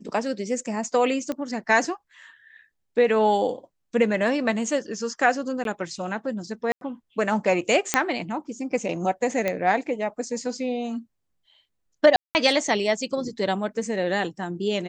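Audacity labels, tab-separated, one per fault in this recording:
1.320000	1.320000	click −16 dBFS
5.640000	5.650000	drop-out 12 ms
6.720000	6.810000	drop-out 92 ms
7.940000	7.940000	click −2 dBFS
9.480000	9.480000	click −11 dBFS
12.160000	12.350000	drop-out 189 ms

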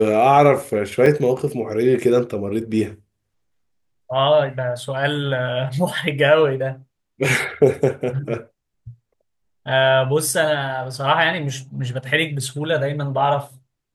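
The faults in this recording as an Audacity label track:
1.060000	1.060000	drop-out 3.1 ms

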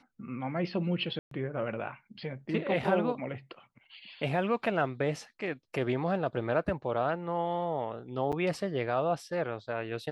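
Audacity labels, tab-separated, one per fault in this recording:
1.190000	1.310000	drop-out 123 ms
8.320000	8.330000	drop-out 7.3 ms

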